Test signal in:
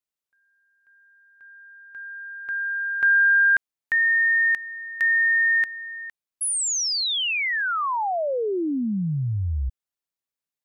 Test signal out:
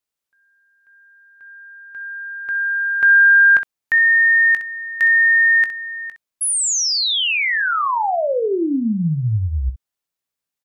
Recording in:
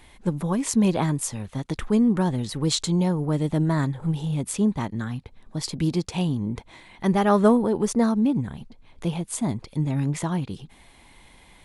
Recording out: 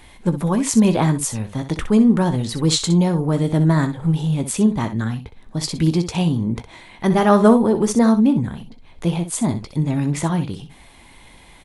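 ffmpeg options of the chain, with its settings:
-af "aecho=1:1:18|63:0.251|0.282,volume=5dB"

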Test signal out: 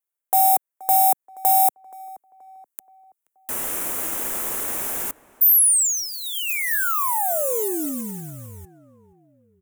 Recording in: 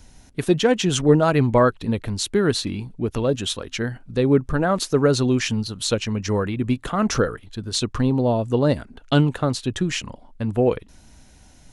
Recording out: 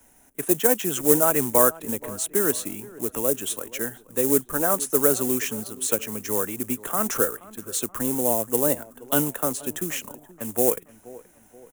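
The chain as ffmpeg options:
-filter_complex "[0:a]acrossover=split=150|460|4100[a][b][c][d];[d]dynaudnorm=f=380:g=9:m=5.5dB[e];[a][b][c][e]amix=inputs=4:normalize=0,acrossover=split=240 2800:gain=0.158 1 0.112[f][g][h];[f][g][h]amix=inputs=3:normalize=0,acrusher=bits=5:mode=log:mix=0:aa=0.000001,asplit=2[i][j];[j]adelay=477,lowpass=f=2.1k:p=1,volume=-19dB,asplit=2[k][l];[l]adelay=477,lowpass=f=2.1k:p=1,volume=0.47,asplit=2[m][n];[n]adelay=477,lowpass=f=2.1k:p=1,volume=0.47,asplit=2[o][p];[p]adelay=477,lowpass=f=2.1k:p=1,volume=0.47[q];[i][k][m][o][q]amix=inputs=5:normalize=0,aexciter=amount=8.9:drive=7.7:freq=6.6k,volume=-3dB"

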